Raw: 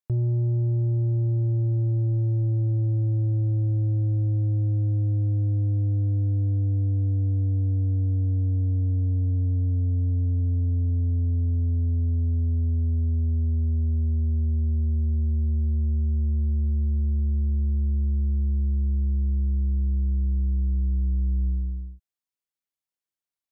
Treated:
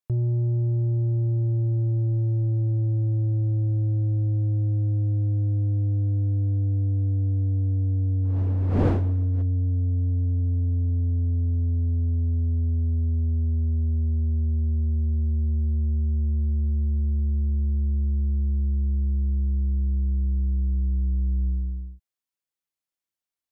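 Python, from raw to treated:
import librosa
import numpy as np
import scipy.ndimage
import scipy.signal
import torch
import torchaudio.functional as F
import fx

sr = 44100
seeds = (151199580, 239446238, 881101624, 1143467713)

y = fx.dmg_wind(x, sr, seeds[0], corner_hz=360.0, level_db=-31.0, at=(8.23, 9.41), fade=0.02)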